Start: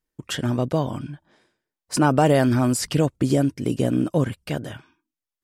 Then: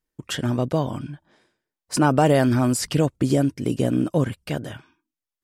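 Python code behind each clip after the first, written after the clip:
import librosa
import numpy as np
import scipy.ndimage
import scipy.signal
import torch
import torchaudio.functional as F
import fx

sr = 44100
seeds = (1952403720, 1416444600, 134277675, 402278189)

y = x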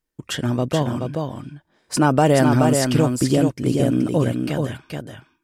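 y = x + 10.0 ** (-4.5 / 20.0) * np.pad(x, (int(427 * sr / 1000.0), 0))[:len(x)]
y = y * librosa.db_to_amplitude(1.5)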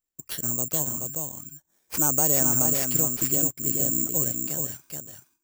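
y = (np.kron(x[::6], np.eye(6)[0]) * 6)[:len(x)]
y = y * librosa.db_to_amplitude(-14.0)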